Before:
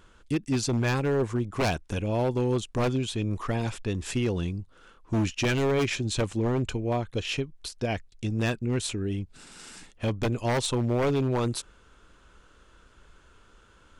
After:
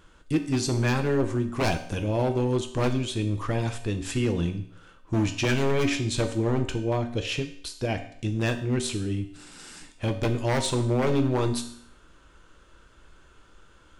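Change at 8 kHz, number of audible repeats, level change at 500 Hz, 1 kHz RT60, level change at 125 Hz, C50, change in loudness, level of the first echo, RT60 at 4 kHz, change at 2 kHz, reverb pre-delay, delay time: +1.0 dB, none, +1.0 dB, 0.65 s, +1.5 dB, 11.0 dB, +1.5 dB, none, 0.65 s, +1.0 dB, 3 ms, none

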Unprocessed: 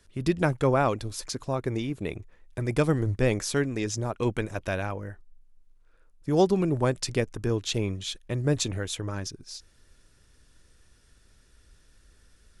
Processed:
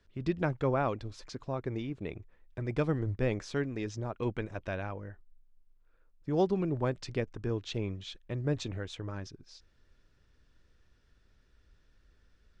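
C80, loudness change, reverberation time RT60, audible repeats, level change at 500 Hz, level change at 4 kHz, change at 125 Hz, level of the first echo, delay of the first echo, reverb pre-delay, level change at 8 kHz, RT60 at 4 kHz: none, -6.5 dB, none, none, -6.5 dB, -10.5 dB, -6.0 dB, none, none, none, -17.5 dB, none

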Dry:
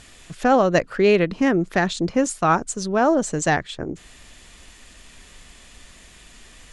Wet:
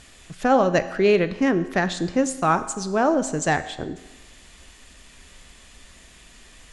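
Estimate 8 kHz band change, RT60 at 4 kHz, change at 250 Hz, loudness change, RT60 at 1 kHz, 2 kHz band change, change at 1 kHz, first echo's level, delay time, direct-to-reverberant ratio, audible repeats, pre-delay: -1.5 dB, 1.0 s, -1.5 dB, -1.5 dB, 1.1 s, -1.5 dB, -1.5 dB, none, none, 11.0 dB, none, 5 ms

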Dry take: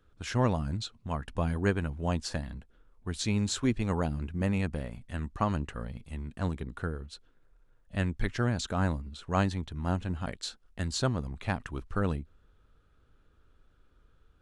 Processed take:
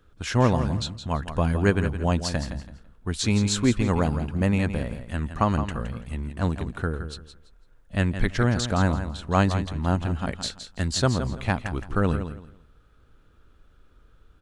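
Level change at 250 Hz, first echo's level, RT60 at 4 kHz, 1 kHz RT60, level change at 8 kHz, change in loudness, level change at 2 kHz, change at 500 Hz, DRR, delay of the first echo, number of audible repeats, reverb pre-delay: +7.0 dB, -10.0 dB, none, none, +7.0 dB, +7.0 dB, +7.0 dB, +7.0 dB, none, 0.167 s, 3, none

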